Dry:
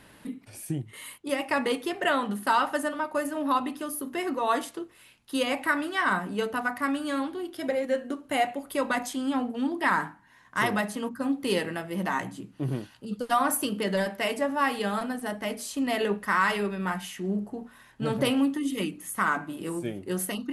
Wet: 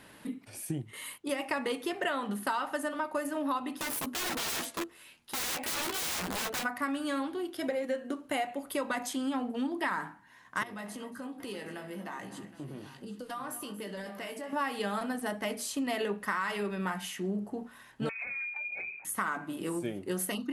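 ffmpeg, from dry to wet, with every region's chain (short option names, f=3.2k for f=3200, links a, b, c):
-filter_complex "[0:a]asettb=1/sr,asplit=3[a][b][c];[a]atrim=end=3.764[d];[b]atrim=start=3.76:end=6.65,asetpts=PTS-STARTPTS,afade=t=in:d=0.004:c=qsin,afade=t=out:st=2.886:d=0.004:c=qsin,aeval=exprs='(mod(28.2*val(0)+1,2)-1)/28.2':c=same,asplit=2[e][f];[f]adelay=12,volume=-7dB[g];[e][g]amix=inputs=2:normalize=0,atrim=end_sample=127449[h];[c]atrim=start=6.646[i];[d][h]acrossfade=d=0.004:c1=hsin:c2=qsin[j];[j][i]acrossfade=d=0.004:c1=qsin:c2=hsin,asettb=1/sr,asplit=3[k][l][m];[k]atrim=end=10.634[n];[l]atrim=start=10.63:end=14.53,asetpts=PTS-STARTPTS,afade=t=in:d=0.004:c=qsin,afade=t=out:st=3.896:d=0.004:c=qsin,asplit=2[o][p];[p]adelay=20,volume=-7.5dB[q];[o][q]amix=inputs=2:normalize=0,atrim=end_sample=171990,acompressor=threshold=-39dB:ratio=4:attack=3.2:release=140:knee=1:detection=peak,aecho=1:1:67|231|252|770:0.112|0.141|0.141|0.158,atrim=end_sample=171990[r];[m]atrim=start=14.526[s];[n][r]acrossfade=d=0.004:c1=hsin:c2=qsin[t];[t][s]acrossfade=d=0.004:c1=qsin:c2=hsin,asettb=1/sr,asplit=3[u][v][w];[u]atrim=end=18.094[x];[v]atrim=start=18.09:end=19.05,asetpts=PTS-STARTPTS,afade=t=in:d=0.004:c=qsin,afade=t=out:st=0.956:d=0.004:c=qsin,lowpass=f=2.3k:t=q:w=0.5098,lowpass=f=2.3k:t=q:w=0.6013,lowpass=f=2.3k:t=q:w=0.9,lowpass=f=2.3k:t=q:w=2.563,afreqshift=-2700,acompressor=threshold=-35dB:ratio=8:attack=3.2:release=140:knee=1:detection=peak[y];[w]atrim=start=19.046[z];[x][y]acrossfade=d=0.004:c1=hsin:c2=qsin[aa];[aa][z]acrossfade=d=0.004:c1=qsin:c2=hsin,lowshelf=f=99:g=-8.5,acompressor=threshold=-29dB:ratio=5"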